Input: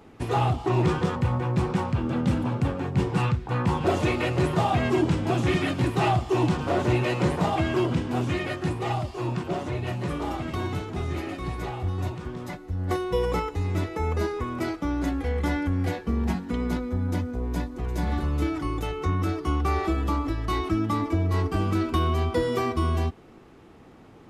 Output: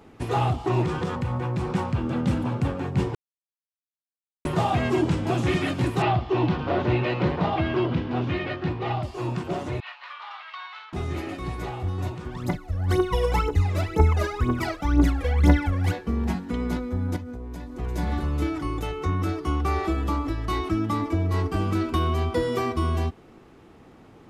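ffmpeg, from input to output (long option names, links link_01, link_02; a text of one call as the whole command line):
ffmpeg -i in.wav -filter_complex "[0:a]asettb=1/sr,asplit=3[link_01][link_02][link_03];[link_01]atrim=end=0.834[link_04];[link_02]atrim=start=0.83:end=1.71,asetpts=PTS-STARTPTS,afade=type=in:duration=0.004:curve=qsin,afade=type=out:start_time=0.876:duration=0.004:curve=qsin,acompressor=threshold=-23dB:ratio=3:attack=3.2:release=140:knee=1:detection=peak[link_05];[link_03]atrim=start=1.706[link_06];[link_04][link_05]acrossfade=duration=0.004:curve1=hsin:curve2=qsin[link_07];[link_07][link_06]acrossfade=duration=0.004:curve1=qsin:curve2=hsin,asettb=1/sr,asplit=3[link_08][link_09][link_10];[link_08]atrim=end=6.024[link_11];[link_09]atrim=start=6.02:end=9.03,asetpts=PTS-STARTPTS,afade=type=in:duration=0.004:curve=qsin,afade=type=out:start_time=3.006:duration=0.004:curve=qsin,lowpass=frequency=4300:width=0.5412,lowpass=frequency=4300:width=1.3066[link_12];[link_10]atrim=start=9.026[link_13];[link_11][link_12]acrossfade=duration=0.004:curve1=hsin:curve2=qsin[link_14];[link_14][link_13]acrossfade=duration=0.004:curve1=qsin:curve2=hsin,asettb=1/sr,asplit=3[link_15][link_16][link_17];[link_15]atrim=end=9.804[link_18];[link_16]atrim=start=9.8:end=10.93,asetpts=PTS-STARTPTS,afade=type=in:duration=0.004:curve=qsin,afade=type=out:start_time=1.126:duration=0.004:curve=qsin,asuperpass=centerf=2100:order=8:qfactor=0.6[link_19];[link_17]atrim=start=10.926[link_20];[link_18][link_19]acrossfade=duration=0.004:curve1=hsin:curve2=qsin[link_21];[link_21][link_20]acrossfade=duration=0.004:curve1=qsin:curve2=hsin,asplit=3[link_22][link_23][link_24];[link_22]afade=type=out:start_time=12.3:duration=0.02[link_25];[link_23]aphaser=in_gain=1:out_gain=1:delay=1.9:decay=0.77:speed=2:type=triangular,afade=type=in:start_time=12.3:duration=0.02,afade=type=out:start_time=15.91:duration=0.02[link_26];[link_24]afade=type=in:start_time=15.91:duration=0.02[link_27];[link_25][link_26][link_27]amix=inputs=3:normalize=0,asettb=1/sr,asplit=3[link_28][link_29][link_30];[link_28]atrim=end=17.164[link_31];[link_29]atrim=start=17.16:end=17.78,asetpts=PTS-STARTPTS,afade=type=in:duration=0.004:curve=qsin,afade=type=out:start_time=0.616:duration=0.004:curve=qsin,acompressor=threshold=-32dB:ratio=5:attack=3.2:release=140:knee=1:detection=peak[link_32];[link_30]atrim=start=17.776[link_33];[link_31][link_32]acrossfade=duration=0.004:curve1=hsin:curve2=qsin[link_34];[link_34][link_33]acrossfade=duration=0.004:curve1=qsin:curve2=hsin,asplit=3[link_35][link_36][link_37];[link_35]atrim=end=3.15,asetpts=PTS-STARTPTS,afade=type=out:start_time=3.146:duration=0.004:curve=hsin[link_38];[link_36]atrim=start=3.15:end=4.45,asetpts=PTS-STARTPTS,volume=0[link_39];[link_37]atrim=start=4.45,asetpts=PTS-STARTPTS,afade=type=in:duration=0.004:curve=hsin[link_40];[link_38][link_39][link_40]concat=n=3:v=0:a=1" out.wav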